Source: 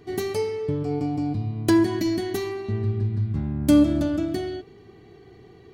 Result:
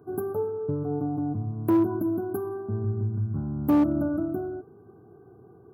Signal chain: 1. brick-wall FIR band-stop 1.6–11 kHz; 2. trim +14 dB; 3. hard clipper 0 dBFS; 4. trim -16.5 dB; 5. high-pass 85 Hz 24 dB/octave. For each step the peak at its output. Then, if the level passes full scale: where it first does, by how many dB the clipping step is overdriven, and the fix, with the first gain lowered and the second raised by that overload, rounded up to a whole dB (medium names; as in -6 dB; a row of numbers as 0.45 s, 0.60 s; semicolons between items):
-8.0 dBFS, +6.0 dBFS, 0.0 dBFS, -16.5 dBFS, -12.0 dBFS; step 2, 6.0 dB; step 2 +8 dB, step 4 -10.5 dB